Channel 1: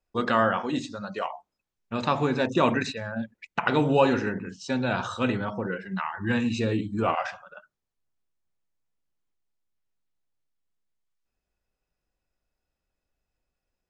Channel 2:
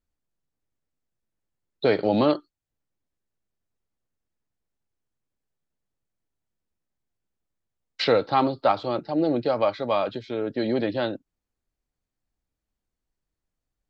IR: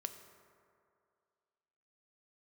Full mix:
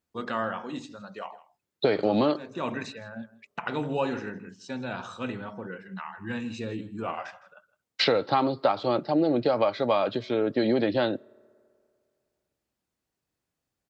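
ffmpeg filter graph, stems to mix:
-filter_complex "[0:a]volume=0.422,asplit=2[s0][s1];[s1]volume=0.112[s2];[1:a]acompressor=threshold=0.0708:ratio=6,volume=1.41,asplit=3[s3][s4][s5];[s4]volume=0.133[s6];[s5]apad=whole_len=612761[s7];[s0][s7]sidechaincompress=threshold=0.0158:ratio=5:attack=16:release=339[s8];[2:a]atrim=start_sample=2205[s9];[s6][s9]afir=irnorm=-1:irlink=0[s10];[s2]aecho=0:1:161:1[s11];[s8][s3][s10][s11]amix=inputs=4:normalize=0,highpass=100"

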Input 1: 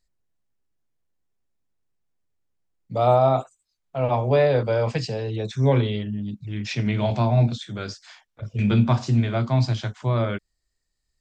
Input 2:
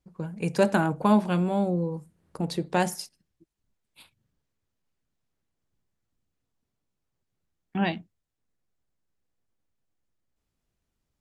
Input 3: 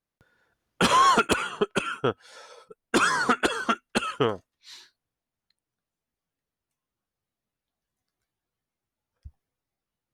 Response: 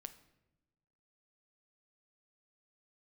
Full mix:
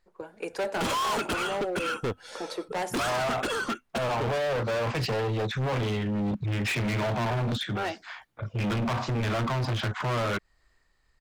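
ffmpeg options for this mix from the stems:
-filter_complex "[0:a]tremolo=f=1.6:d=0.38,firequalizer=gain_entry='entry(200,0);entry(1100,11);entry(5600,-2)':delay=0.05:min_phase=1,volume=1.33[s0];[1:a]highpass=f=360:w=0.5412,highpass=f=360:w=1.3066,volume=1.12,asplit=2[s1][s2];[2:a]equalizer=f=1100:t=o:w=2.5:g=-6.5,volume=1.26[s3];[s2]apad=whole_len=498538[s4];[s0][s4]sidechaincompress=threshold=0.0126:ratio=4:attack=6.1:release=1060[s5];[s5][s3]amix=inputs=2:normalize=0,dynaudnorm=f=120:g=7:m=3.55,alimiter=limit=0.299:level=0:latency=1:release=92,volume=1[s6];[s1][s6]amix=inputs=2:normalize=0,highshelf=f=3100:g=-7.5,volume=20,asoftclip=hard,volume=0.0501"

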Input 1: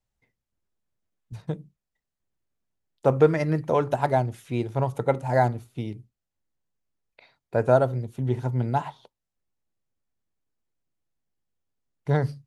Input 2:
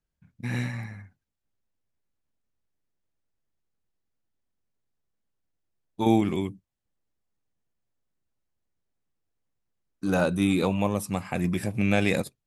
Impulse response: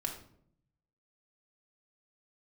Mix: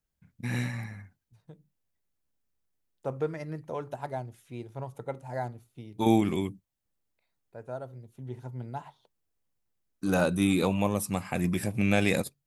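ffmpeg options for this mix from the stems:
-filter_complex "[0:a]volume=0.224[s0];[1:a]volume=0.841,asplit=2[s1][s2];[s2]apad=whole_len=549763[s3];[s0][s3]sidechaincompress=threshold=0.00562:ratio=4:attack=10:release=1130[s4];[s4][s1]amix=inputs=2:normalize=0,highshelf=f=8800:g=7.5"

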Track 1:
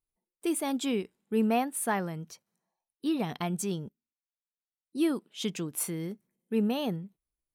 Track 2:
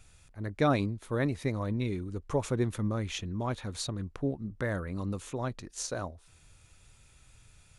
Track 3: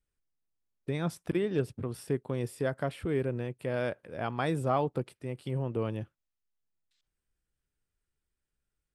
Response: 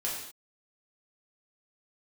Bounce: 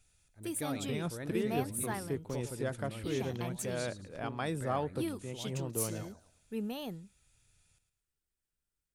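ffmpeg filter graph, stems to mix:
-filter_complex "[0:a]volume=0.316[s0];[1:a]bandreject=f=1100:w=6.9,volume=0.211,asplit=2[s1][s2];[s2]volume=0.299[s3];[2:a]volume=0.531[s4];[s3]aecho=0:1:110|220|330|440|550:1|0.37|0.137|0.0507|0.0187[s5];[s0][s1][s4][s5]amix=inputs=4:normalize=0,highshelf=f=4200:g=7.5"

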